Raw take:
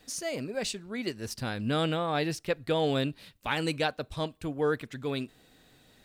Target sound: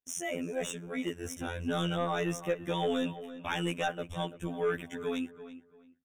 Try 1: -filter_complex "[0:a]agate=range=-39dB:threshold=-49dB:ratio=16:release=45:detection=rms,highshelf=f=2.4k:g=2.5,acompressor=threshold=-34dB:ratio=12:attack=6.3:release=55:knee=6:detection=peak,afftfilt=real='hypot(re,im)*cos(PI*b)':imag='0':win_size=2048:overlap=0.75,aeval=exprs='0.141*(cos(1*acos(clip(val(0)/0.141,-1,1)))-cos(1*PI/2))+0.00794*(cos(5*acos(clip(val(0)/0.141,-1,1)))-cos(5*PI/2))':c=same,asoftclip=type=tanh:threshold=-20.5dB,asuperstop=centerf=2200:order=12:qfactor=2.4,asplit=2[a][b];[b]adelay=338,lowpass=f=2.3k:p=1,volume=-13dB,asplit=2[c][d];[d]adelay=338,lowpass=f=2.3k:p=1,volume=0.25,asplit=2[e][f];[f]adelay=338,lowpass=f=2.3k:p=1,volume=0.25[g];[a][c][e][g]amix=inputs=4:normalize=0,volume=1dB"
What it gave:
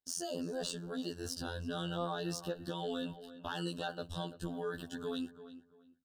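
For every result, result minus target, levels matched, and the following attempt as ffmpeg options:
compressor: peak gain reduction +12 dB; 4000 Hz band +3.0 dB
-filter_complex "[0:a]agate=range=-39dB:threshold=-49dB:ratio=16:release=45:detection=rms,highshelf=f=2.4k:g=2.5,afftfilt=real='hypot(re,im)*cos(PI*b)':imag='0':win_size=2048:overlap=0.75,aeval=exprs='0.141*(cos(1*acos(clip(val(0)/0.141,-1,1)))-cos(1*PI/2))+0.00794*(cos(5*acos(clip(val(0)/0.141,-1,1)))-cos(5*PI/2))':c=same,asoftclip=type=tanh:threshold=-20.5dB,asuperstop=centerf=2200:order=12:qfactor=2.4,asplit=2[a][b];[b]adelay=338,lowpass=f=2.3k:p=1,volume=-13dB,asplit=2[c][d];[d]adelay=338,lowpass=f=2.3k:p=1,volume=0.25,asplit=2[e][f];[f]adelay=338,lowpass=f=2.3k:p=1,volume=0.25[g];[a][c][e][g]amix=inputs=4:normalize=0,volume=1dB"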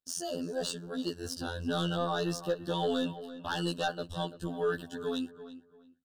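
4000 Hz band +2.5 dB
-filter_complex "[0:a]agate=range=-39dB:threshold=-49dB:ratio=16:release=45:detection=rms,highshelf=f=2.4k:g=2.5,afftfilt=real='hypot(re,im)*cos(PI*b)':imag='0':win_size=2048:overlap=0.75,aeval=exprs='0.141*(cos(1*acos(clip(val(0)/0.141,-1,1)))-cos(1*PI/2))+0.00794*(cos(5*acos(clip(val(0)/0.141,-1,1)))-cos(5*PI/2))':c=same,asoftclip=type=tanh:threshold=-20.5dB,asuperstop=centerf=4500:order=12:qfactor=2.4,asplit=2[a][b];[b]adelay=338,lowpass=f=2.3k:p=1,volume=-13dB,asplit=2[c][d];[d]adelay=338,lowpass=f=2.3k:p=1,volume=0.25,asplit=2[e][f];[f]adelay=338,lowpass=f=2.3k:p=1,volume=0.25[g];[a][c][e][g]amix=inputs=4:normalize=0,volume=1dB"

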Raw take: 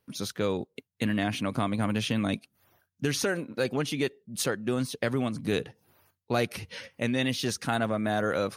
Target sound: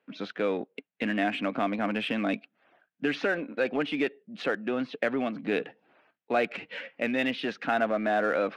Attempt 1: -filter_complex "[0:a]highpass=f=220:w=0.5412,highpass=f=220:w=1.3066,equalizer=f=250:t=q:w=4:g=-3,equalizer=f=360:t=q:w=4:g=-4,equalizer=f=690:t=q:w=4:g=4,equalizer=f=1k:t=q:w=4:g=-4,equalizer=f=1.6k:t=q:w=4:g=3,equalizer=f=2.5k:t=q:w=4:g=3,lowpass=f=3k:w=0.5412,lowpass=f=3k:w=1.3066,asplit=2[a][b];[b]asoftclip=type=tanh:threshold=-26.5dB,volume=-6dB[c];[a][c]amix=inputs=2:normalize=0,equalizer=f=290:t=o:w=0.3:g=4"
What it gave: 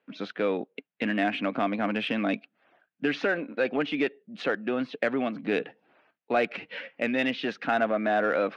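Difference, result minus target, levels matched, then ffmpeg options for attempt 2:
soft clip: distortion -6 dB
-filter_complex "[0:a]highpass=f=220:w=0.5412,highpass=f=220:w=1.3066,equalizer=f=250:t=q:w=4:g=-3,equalizer=f=360:t=q:w=4:g=-4,equalizer=f=690:t=q:w=4:g=4,equalizer=f=1k:t=q:w=4:g=-4,equalizer=f=1.6k:t=q:w=4:g=3,equalizer=f=2.5k:t=q:w=4:g=3,lowpass=f=3k:w=0.5412,lowpass=f=3k:w=1.3066,asplit=2[a][b];[b]asoftclip=type=tanh:threshold=-35.5dB,volume=-6dB[c];[a][c]amix=inputs=2:normalize=0,equalizer=f=290:t=o:w=0.3:g=4"

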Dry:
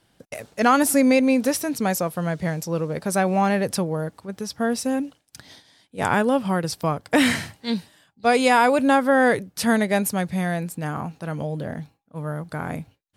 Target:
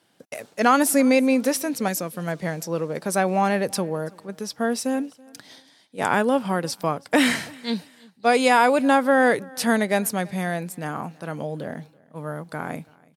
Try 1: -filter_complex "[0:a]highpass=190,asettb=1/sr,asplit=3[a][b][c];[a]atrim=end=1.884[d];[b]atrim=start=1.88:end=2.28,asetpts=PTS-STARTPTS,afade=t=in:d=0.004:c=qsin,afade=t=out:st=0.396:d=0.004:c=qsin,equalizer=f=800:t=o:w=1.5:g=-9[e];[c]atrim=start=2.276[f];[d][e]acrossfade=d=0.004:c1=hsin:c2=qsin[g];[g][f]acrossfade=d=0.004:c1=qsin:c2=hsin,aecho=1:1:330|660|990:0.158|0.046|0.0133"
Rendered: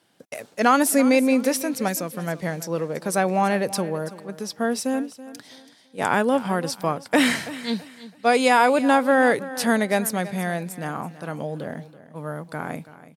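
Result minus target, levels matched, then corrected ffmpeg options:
echo-to-direct +9 dB
-filter_complex "[0:a]highpass=190,asettb=1/sr,asplit=3[a][b][c];[a]atrim=end=1.884[d];[b]atrim=start=1.88:end=2.28,asetpts=PTS-STARTPTS,afade=t=in:d=0.004:c=qsin,afade=t=out:st=0.396:d=0.004:c=qsin,equalizer=f=800:t=o:w=1.5:g=-9[e];[c]atrim=start=2.276[f];[d][e]acrossfade=d=0.004:c1=hsin:c2=qsin[g];[g][f]acrossfade=d=0.004:c1=qsin:c2=hsin,aecho=1:1:330|660:0.0562|0.0163"

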